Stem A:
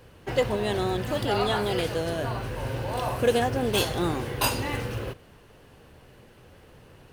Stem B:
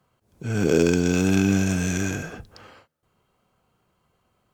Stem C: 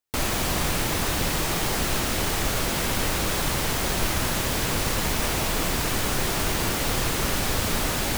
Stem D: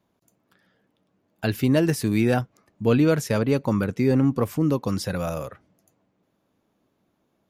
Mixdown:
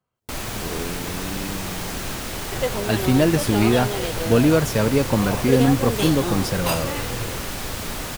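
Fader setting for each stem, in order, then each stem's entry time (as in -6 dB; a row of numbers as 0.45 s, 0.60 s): -0.5 dB, -13.0 dB, -4.5 dB, +2.5 dB; 2.25 s, 0.00 s, 0.15 s, 1.45 s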